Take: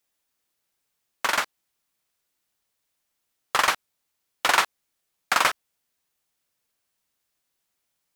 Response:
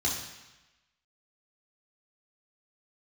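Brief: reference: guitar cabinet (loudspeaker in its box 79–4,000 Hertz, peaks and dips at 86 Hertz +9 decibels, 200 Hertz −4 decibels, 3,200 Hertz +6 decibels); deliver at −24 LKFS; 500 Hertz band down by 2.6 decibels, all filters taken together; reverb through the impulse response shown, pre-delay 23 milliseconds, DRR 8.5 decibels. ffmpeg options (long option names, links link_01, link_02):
-filter_complex "[0:a]equalizer=frequency=500:width_type=o:gain=-3.5,asplit=2[link_01][link_02];[1:a]atrim=start_sample=2205,adelay=23[link_03];[link_02][link_03]afir=irnorm=-1:irlink=0,volume=-16dB[link_04];[link_01][link_04]amix=inputs=2:normalize=0,highpass=79,equalizer=frequency=86:width_type=q:width=4:gain=9,equalizer=frequency=200:width_type=q:width=4:gain=-4,equalizer=frequency=3200:width_type=q:width=4:gain=6,lowpass=frequency=4000:width=0.5412,lowpass=frequency=4000:width=1.3066"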